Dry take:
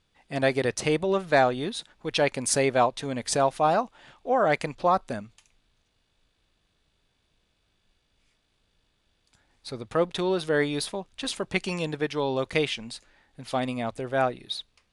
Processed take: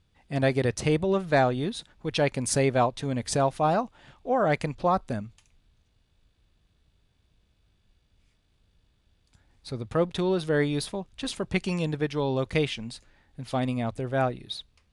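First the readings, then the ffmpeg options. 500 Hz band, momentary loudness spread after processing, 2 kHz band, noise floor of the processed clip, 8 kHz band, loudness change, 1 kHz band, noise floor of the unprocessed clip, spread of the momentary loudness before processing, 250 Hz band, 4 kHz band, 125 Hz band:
-1.0 dB, 13 LU, -3.0 dB, -69 dBFS, -3.0 dB, -1.0 dB, -2.0 dB, -72 dBFS, 12 LU, +2.0 dB, -3.0 dB, +6.0 dB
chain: -af "equalizer=f=64:w=0.34:g=12.5,volume=-3dB"

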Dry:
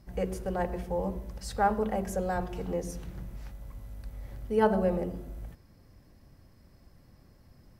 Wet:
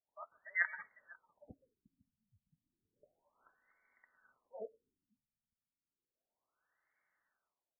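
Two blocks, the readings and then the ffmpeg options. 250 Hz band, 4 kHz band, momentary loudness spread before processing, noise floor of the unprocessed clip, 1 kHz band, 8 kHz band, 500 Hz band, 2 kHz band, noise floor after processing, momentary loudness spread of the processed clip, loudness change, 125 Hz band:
-36.0 dB, under -30 dB, 19 LU, -59 dBFS, -26.0 dB, under -30 dB, -26.0 dB, +0.5 dB, under -85 dBFS, 20 LU, -8.5 dB, -36.0 dB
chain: -filter_complex "[0:a]highpass=f=73:w=0.5412,highpass=f=73:w=1.3066,afftdn=nr=19:nf=-47,bandreject=f=60:t=h:w=6,bandreject=f=120:t=h:w=6,bandreject=f=180:t=h:w=6,bandreject=f=240:t=h:w=6,bandreject=f=300:t=h:w=6,bandreject=f=360:t=h:w=6,adynamicequalizer=threshold=0.00316:dfrequency=180:dqfactor=6.5:tfrequency=180:tqfactor=6.5:attack=5:release=100:ratio=0.375:range=2:mode=boostabove:tftype=bell,acrossover=split=150[a][b];[a]aeval=exprs='clip(val(0),-1,0.00335)':c=same[c];[b]dynaudnorm=f=110:g=9:m=7dB[d];[c][d]amix=inputs=2:normalize=0,lowpass=f=3k:t=q:w=0.5098,lowpass=f=3k:t=q:w=0.6013,lowpass=f=3k:t=q:w=0.9,lowpass=f=3k:t=q:w=2.563,afreqshift=-3500,aecho=1:1:502:0.126,afftfilt=real='re*lt(b*sr/1024,240*pow(2300/240,0.5+0.5*sin(2*PI*0.32*pts/sr)))':imag='im*lt(b*sr/1024,240*pow(2300/240,0.5+0.5*sin(2*PI*0.32*pts/sr)))':win_size=1024:overlap=0.75,volume=5.5dB"

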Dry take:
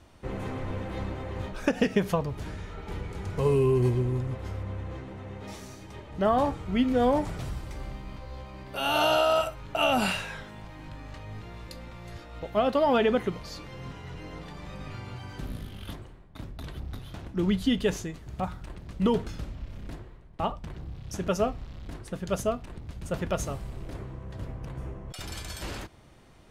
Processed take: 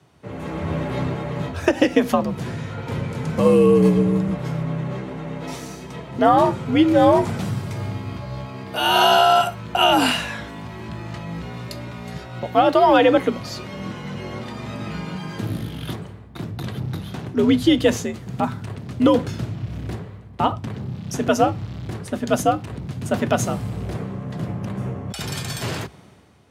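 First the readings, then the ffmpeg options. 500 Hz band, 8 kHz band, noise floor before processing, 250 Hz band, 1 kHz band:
+8.0 dB, +9.0 dB, -48 dBFS, +9.5 dB, +11.0 dB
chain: -af "dynaudnorm=f=120:g=9:m=10.5dB,afreqshift=63,volume=-1dB"

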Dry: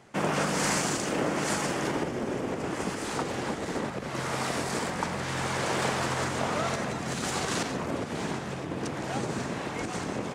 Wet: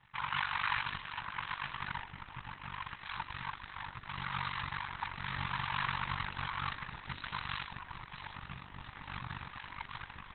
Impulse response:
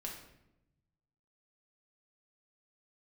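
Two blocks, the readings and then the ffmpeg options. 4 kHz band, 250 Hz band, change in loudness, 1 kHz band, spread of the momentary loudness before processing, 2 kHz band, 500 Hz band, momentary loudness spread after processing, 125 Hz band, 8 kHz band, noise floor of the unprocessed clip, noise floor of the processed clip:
-7.0 dB, -21.5 dB, -9.0 dB, -6.5 dB, 6 LU, -5.0 dB, -29.0 dB, 12 LU, -10.5 dB, under -40 dB, -36 dBFS, -53 dBFS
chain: -af "bandreject=f=50:t=h:w=6,bandreject=f=100:t=h:w=6,bandreject=f=150:t=h:w=6,bandreject=f=200:t=h:w=6,bandreject=f=250:t=h:w=6,afftfilt=real='re*(1-between(b*sr/4096,150,840))':imag='im*(1-between(b*sr/4096,150,840))':win_size=4096:overlap=0.75,tremolo=f=48:d=0.788" -ar 48000 -c:a libopus -b:a 6k

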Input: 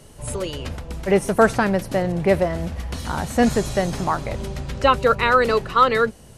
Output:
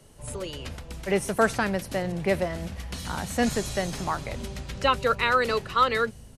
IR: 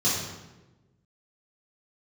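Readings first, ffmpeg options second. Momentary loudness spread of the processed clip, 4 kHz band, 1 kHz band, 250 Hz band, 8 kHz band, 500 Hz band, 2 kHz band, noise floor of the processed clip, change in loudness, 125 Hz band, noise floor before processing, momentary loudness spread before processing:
13 LU, -2.0 dB, -6.0 dB, -7.5 dB, -2.0 dB, -7.5 dB, -4.0 dB, -46 dBFS, -6.0 dB, -7.0 dB, -45 dBFS, 13 LU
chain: -filter_complex "[0:a]acrossover=split=190|1700[a][b][c];[a]aecho=1:1:965:0.422[d];[c]dynaudnorm=f=380:g=3:m=6dB[e];[d][b][e]amix=inputs=3:normalize=0,volume=-7.5dB"

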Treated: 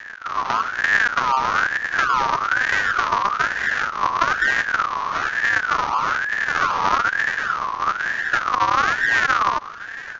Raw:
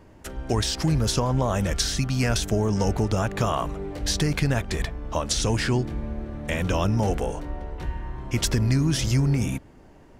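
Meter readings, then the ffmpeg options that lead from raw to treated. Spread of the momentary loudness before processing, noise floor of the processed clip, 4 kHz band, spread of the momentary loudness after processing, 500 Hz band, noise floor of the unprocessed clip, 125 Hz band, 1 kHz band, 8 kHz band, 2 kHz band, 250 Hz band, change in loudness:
11 LU, -34 dBFS, -0.5 dB, 5 LU, -5.5 dB, -50 dBFS, -19.0 dB, +14.0 dB, -7.5 dB, +17.5 dB, -12.5 dB, +5.5 dB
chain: -af "alimiter=limit=-19.5dB:level=0:latency=1:release=13,equalizer=f=220:t=o:w=2.5:g=10,acompressor=threshold=-20dB:ratio=6,bass=f=250:g=9,treble=f=4k:g=5,aeval=exprs='val(0)+0.0178*(sin(2*PI*50*n/s)+sin(2*PI*2*50*n/s)/2+sin(2*PI*3*50*n/s)/3+sin(2*PI*4*50*n/s)/4+sin(2*PI*5*50*n/s)/5)':c=same,aresample=11025,acrusher=samples=30:mix=1:aa=0.000001:lfo=1:lforange=48:lforate=1.3,aresample=44100,aecho=1:1:1198:0.126,aeval=exprs='val(0)*sin(2*PI*1400*n/s+1400*0.25/1.1*sin(2*PI*1.1*n/s))':c=same"

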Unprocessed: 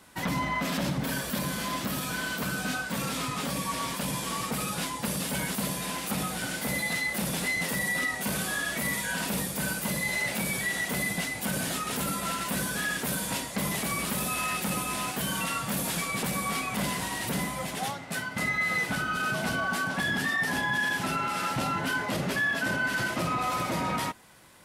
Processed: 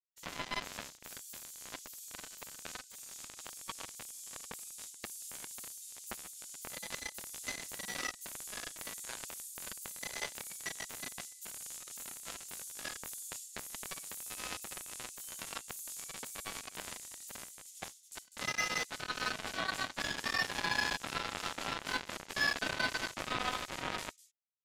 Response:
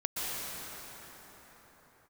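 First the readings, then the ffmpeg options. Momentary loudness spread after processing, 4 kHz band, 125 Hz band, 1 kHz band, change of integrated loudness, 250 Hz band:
12 LU, -7.0 dB, -20.0 dB, -11.5 dB, -10.5 dB, -19.0 dB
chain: -filter_complex "[0:a]equalizer=f=6.9k:w=2.9:g=9,anlmdn=1.58,bass=f=250:g=-10,treble=f=4k:g=-12,acrossover=split=5600[a][b];[a]acrusher=bits=3:mix=0:aa=0.5[c];[b]aecho=1:1:55.39|198.3:0.447|0.316[d];[c][d]amix=inputs=2:normalize=0,volume=-1.5dB"

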